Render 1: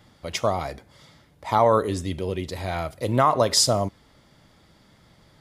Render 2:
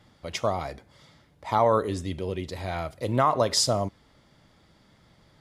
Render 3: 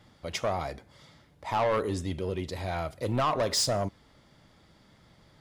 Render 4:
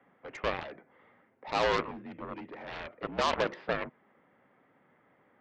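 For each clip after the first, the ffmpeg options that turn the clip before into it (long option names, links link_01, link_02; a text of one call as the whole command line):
ffmpeg -i in.wav -af "highshelf=frequency=11000:gain=-8,volume=-3dB" out.wav
ffmpeg -i in.wav -af "asoftclip=type=tanh:threshold=-21dB" out.wav
ffmpeg -i in.wav -af "highpass=frequency=260:width_type=q:width=0.5412,highpass=frequency=260:width_type=q:width=1.307,lowpass=frequency=2400:width_type=q:width=0.5176,lowpass=frequency=2400:width_type=q:width=0.7071,lowpass=frequency=2400:width_type=q:width=1.932,afreqshift=-55,aeval=exprs='0.15*(cos(1*acos(clip(val(0)/0.15,-1,1)))-cos(1*PI/2))+0.0422*(cos(7*acos(clip(val(0)/0.15,-1,1)))-cos(7*PI/2))':channel_layout=same,volume=-2dB" out.wav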